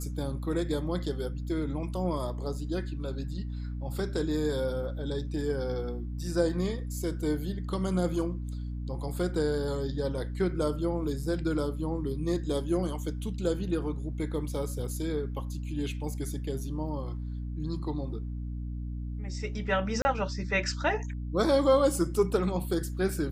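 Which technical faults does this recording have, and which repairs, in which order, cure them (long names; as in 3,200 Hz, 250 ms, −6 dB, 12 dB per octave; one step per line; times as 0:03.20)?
mains hum 60 Hz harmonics 5 −35 dBFS
0:20.02–0:20.05: drop-out 30 ms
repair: hum removal 60 Hz, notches 5
repair the gap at 0:20.02, 30 ms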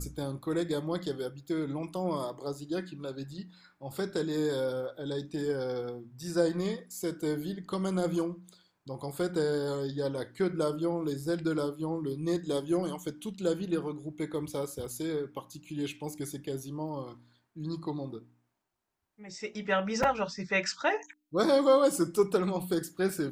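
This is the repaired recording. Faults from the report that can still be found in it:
none of them is left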